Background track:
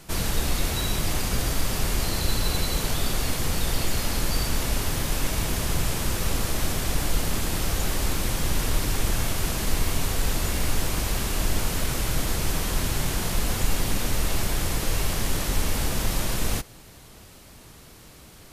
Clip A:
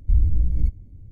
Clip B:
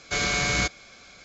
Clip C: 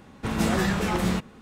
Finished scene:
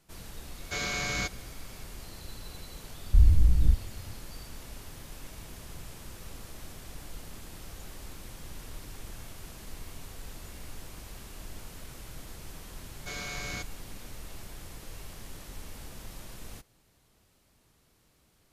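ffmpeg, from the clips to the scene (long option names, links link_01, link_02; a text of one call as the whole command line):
ffmpeg -i bed.wav -i cue0.wav -i cue1.wav -filter_complex "[2:a]asplit=2[link_01][link_02];[0:a]volume=-19dB[link_03];[link_01]atrim=end=1.24,asetpts=PTS-STARTPTS,volume=-7.5dB,afade=type=in:duration=0.004:curve=hsin,afade=type=out:start_time=1.236:duration=0.004:curve=hsin,adelay=600[link_04];[1:a]atrim=end=1.11,asetpts=PTS-STARTPTS,volume=-1dB,afade=type=in:duration=0.004:curve=hsin,afade=type=out:start_time=1.106:duration=0.004:curve=hsin,adelay=134505S[link_05];[link_02]atrim=end=1.24,asetpts=PTS-STARTPTS,volume=-13.5dB,afade=type=in:duration=0.004:curve=hsin,afade=type=out:start_time=1.236:duration=0.004:curve=hsin,adelay=12950[link_06];[link_03][link_04][link_05][link_06]amix=inputs=4:normalize=0" out.wav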